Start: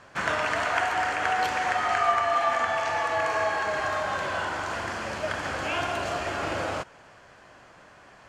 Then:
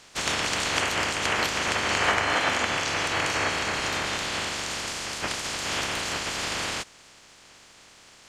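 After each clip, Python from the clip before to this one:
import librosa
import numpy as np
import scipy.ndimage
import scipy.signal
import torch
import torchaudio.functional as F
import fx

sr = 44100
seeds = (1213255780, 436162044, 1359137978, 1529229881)

y = fx.spec_clip(x, sr, under_db=25)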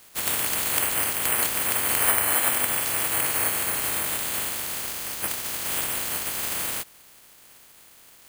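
y = (np.kron(scipy.signal.resample_poly(x, 1, 4), np.eye(4)[0]) * 4)[:len(x)]
y = F.gain(torch.from_numpy(y), -4.0).numpy()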